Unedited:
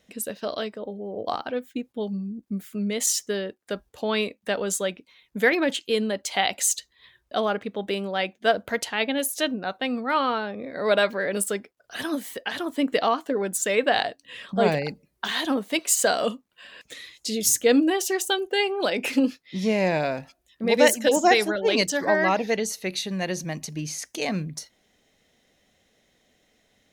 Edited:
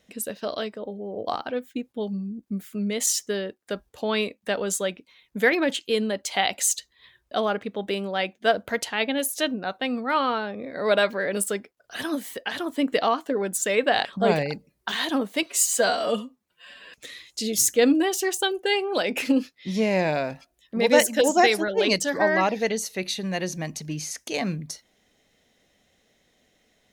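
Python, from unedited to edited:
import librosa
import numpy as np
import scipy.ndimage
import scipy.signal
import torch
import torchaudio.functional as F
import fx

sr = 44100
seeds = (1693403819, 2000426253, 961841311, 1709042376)

y = fx.edit(x, sr, fx.cut(start_s=14.05, length_s=0.36),
    fx.stretch_span(start_s=15.82, length_s=0.97, factor=1.5), tone=tone)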